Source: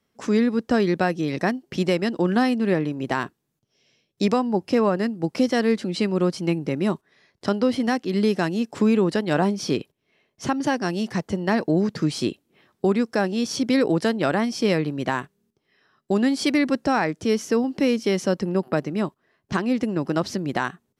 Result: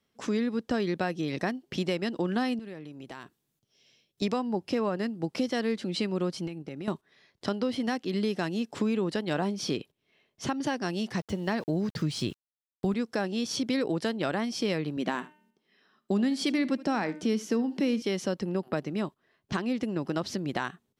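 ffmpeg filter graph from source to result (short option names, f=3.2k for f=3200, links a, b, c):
-filter_complex "[0:a]asettb=1/sr,asplit=3[a][b][c];[a]atrim=end=2.594[d];[b]atrim=start=2.59:end=4.22,asetpts=PTS-STARTPTS,afade=t=in:d=0.004:c=qsin,afade=t=out:st=1.626:d=0.004:c=qsin,acompressor=threshold=-40dB:ratio=3:attack=3.2:release=140:knee=1:detection=peak,highshelf=f=5.7k:g=7[e];[c]atrim=start=4.216[f];[d][e]acrossfade=d=0.004:c1=hsin:c2=qsin[g];[g][f]acrossfade=d=0.004:c1=qsin:c2=hsin,asettb=1/sr,asplit=3[h][i][j];[h]atrim=end=6.474[k];[i]atrim=start=6.47:end=6.88,asetpts=PTS-STARTPTS,afade=t=in:d=0.004:c=qsin,afade=t=out:st=0.406:d=0.004:c=qsin,bandreject=f=960:w=11,agate=range=-10dB:threshold=-30dB:ratio=16:release=100:detection=peak,acompressor=threshold=-30dB:ratio=8:attack=3.2:release=140:knee=1:detection=peak[l];[j]atrim=start=6.876[m];[k][l]acrossfade=d=0.004:c1=hsin:c2=qsin[n];[n][m]acrossfade=d=0.004:c1=qsin:c2=hsin,asettb=1/sr,asplit=3[o][p][q];[o]atrim=end=11.184[r];[p]atrim=start=11.18:end=12.94,asetpts=PTS-STARTPTS,afade=t=in:d=0.004:c=qsin,afade=t=out:st=1.756:d=0.004:c=qsin,asubboost=boost=8.5:cutoff=160,aeval=exprs='val(0)*gte(abs(val(0)),0.00668)':c=same[s];[q]atrim=start=12.936[t];[r][s]acrossfade=d=0.004:c1=hsin:c2=qsin[u];[u][t]acrossfade=d=0.004:c1=qsin:c2=hsin,asettb=1/sr,asplit=3[v][w][x];[v]atrim=end=14.974[y];[w]atrim=start=14.97:end=18.02,asetpts=PTS-STARTPTS,afade=t=in:d=0.004:c=qsin,afade=t=out:st=3.046:d=0.004:c=qsin,lowshelf=f=150:t=q:w=3:g=-9,bandreject=f=302.9:t=h:w=4,bandreject=f=605.8:t=h:w=4,bandreject=f=908.7:t=h:w=4,bandreject=f=1.2116k:t=h:w=4,bandreject=f=1.5145k:t=h:w=4,bandreject=f=1.8174k:t=h:w=4,bandreject=f=2.1203k:t=h:w=4,bandreject=f=2.4232k:t=h:w=4,bandreject=f=2.7261k:t=h:w=4,bandreject=f=3.029k:t=h:w=4,bandreject=f=3.3319k:t=h:w=4,aecho=1:1:74:0.106,atrim=end_sample=134505[z];[x]atrim=start=18.016[aa];[y][z]acrossfade=d=0.004:c1=hsin:c2=qsin[ab];[ab][aa]acrossfade=d=0.004:c1=qsin:c2=hsin,equalizer=f=3.4k:w=1.7:g=4.5,acompressor=threshold=-24dB:ratio=2,volume=-4dB"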